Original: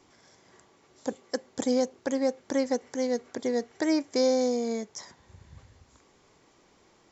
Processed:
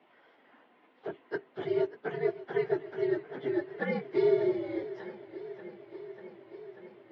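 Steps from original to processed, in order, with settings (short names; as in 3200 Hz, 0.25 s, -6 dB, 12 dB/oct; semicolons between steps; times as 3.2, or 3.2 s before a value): phase scrambler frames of 50 ms; mistuned SSB -120 Hz 430–3200 Hz; warbling echo 0.59 s, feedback 77%, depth 65 cents, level -16.5 dB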